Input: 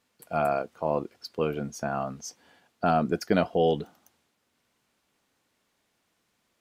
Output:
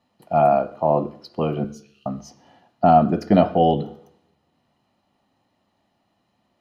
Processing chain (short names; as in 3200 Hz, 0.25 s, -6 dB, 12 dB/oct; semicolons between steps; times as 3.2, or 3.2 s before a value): 1.64–2.06 steep high-pass 2900 Hz 36 dB/oct; reverb RT60 0.60 s, pre-delay 3 ms, DRR 11.5 dB; gain -5 dB